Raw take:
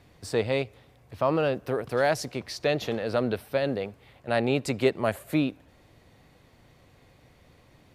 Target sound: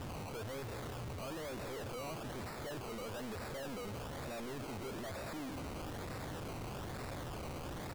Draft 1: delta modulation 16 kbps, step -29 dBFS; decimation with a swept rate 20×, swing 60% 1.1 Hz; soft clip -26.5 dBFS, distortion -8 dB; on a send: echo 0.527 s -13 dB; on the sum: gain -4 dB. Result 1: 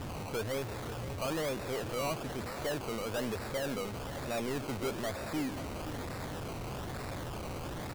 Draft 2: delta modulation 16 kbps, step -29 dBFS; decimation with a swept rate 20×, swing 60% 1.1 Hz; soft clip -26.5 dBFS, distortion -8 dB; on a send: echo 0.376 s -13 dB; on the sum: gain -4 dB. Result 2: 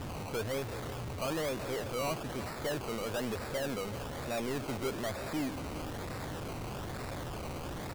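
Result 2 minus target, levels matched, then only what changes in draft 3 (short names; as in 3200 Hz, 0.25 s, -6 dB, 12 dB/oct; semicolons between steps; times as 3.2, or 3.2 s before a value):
soft clip: distortion -6 dB
change: soft clip -38 dBFS, distortion -1 dB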